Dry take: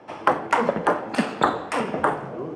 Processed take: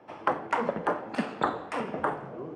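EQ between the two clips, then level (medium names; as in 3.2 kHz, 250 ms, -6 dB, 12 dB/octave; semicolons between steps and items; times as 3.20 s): treble shelf 5.2 kHz -8.5 dB; -7.0 dB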